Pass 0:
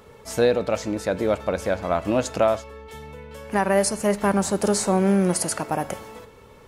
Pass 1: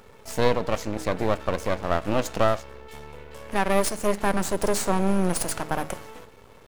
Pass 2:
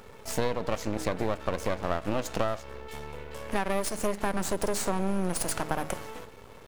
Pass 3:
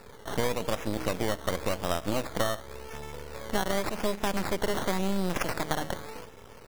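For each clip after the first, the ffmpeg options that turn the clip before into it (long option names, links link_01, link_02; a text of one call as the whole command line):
ffmpeg -i in.wav -af "bandreject=frequency=156.9:width_type=h:width=4,bandreject=frequency=313.8:width_type=h:width=4,bandreject=frequency=470.7:width_type=h:width=4,aeval=exprs='max(val(0),0)':channel_layout=same,acrusher=bits=9:dc=4:mix=0:aa=0.000001,volume=1.5dB" out.wav
ffmpeg -i in.wav -af "acompressor=threshold=-25dB:ratio=5,volume=1.5dB" out.wav
ffmpeg -i in.wav -af "acrusher=samples=14:mix=1:aa=0.000001:lfo=1:lforange=8.4:lforate=0.9" out.wav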